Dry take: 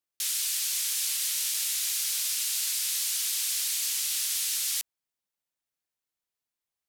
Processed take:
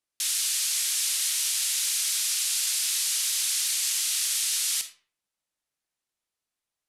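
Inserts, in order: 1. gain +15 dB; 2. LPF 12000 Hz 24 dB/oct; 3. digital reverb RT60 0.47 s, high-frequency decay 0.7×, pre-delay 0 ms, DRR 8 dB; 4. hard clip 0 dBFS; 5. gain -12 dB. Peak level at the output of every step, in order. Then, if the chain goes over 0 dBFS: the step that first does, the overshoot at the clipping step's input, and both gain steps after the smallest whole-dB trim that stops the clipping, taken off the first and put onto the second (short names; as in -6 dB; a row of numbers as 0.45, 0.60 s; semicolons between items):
-1.5, -2.0, -2.0, -2.0, -14.0 dBFS; no overload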